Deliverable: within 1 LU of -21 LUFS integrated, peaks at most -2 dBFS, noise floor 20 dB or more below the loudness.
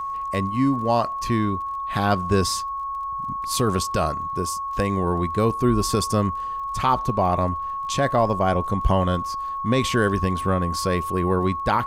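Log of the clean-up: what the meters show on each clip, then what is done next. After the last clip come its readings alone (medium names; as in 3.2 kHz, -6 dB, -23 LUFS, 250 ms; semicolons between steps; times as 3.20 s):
tick rate 25 per s; steady tone 1.1 kHz; tone level -26 dBFS; loudness -23.0 LUFS; peak level -7.0 dBFS; loudness target -21.0 LUFS
-> de-click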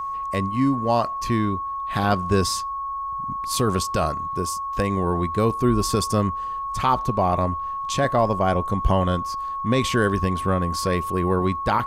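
tick rate 0 per s; steady tone 1.1 kHz; tone level -26 dBFS
-> band-stop 1.1 kHz, Q 30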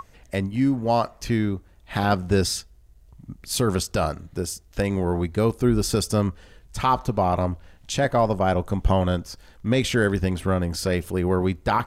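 steady tone not found; loudness -24.0 LUFS; peak level -7.5 dBFS; loudness target -21.0 LUFS
-> trim +3 dB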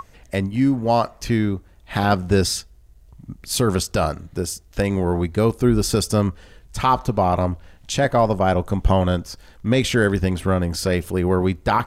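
loudness -21.0 LUFS; peak level -4.5 dBFS; noise floor -49 dBFS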